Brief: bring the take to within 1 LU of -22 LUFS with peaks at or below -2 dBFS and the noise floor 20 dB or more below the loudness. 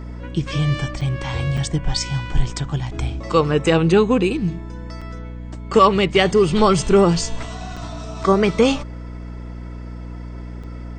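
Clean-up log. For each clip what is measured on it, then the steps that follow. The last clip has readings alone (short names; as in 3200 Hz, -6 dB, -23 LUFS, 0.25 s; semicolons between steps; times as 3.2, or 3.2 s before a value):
dropouts 5; longest dropout 5.5 ms; hum 60 Hz; harmonics up to 300 Hz; hum level -30 dBFS; loudness -19.0 LUFS; peak -2.0 dBFS; loudness target -22.0 LUFS
-> interpolate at 1.01/1.57/5.01/7.76/10.63, 5.5 ms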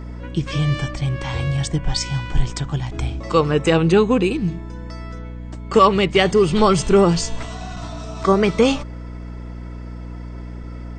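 dropouts 0; hum 60 Hz; harmonics up to 300 Hz; hum level -30 dBFS
-> notches 60/120/180/240/300 Hz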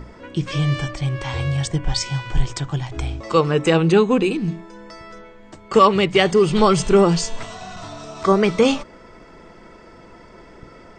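hum none; loudness -19.0 LUFS; peak -2.5 dBFS; loudness target -22.0 LUFS
-> gain -3 dB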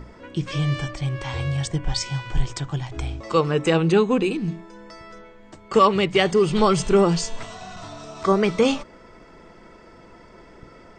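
loudness -22.0 LUFS; peak -5.5 dBFS; noise floor -48 dBFS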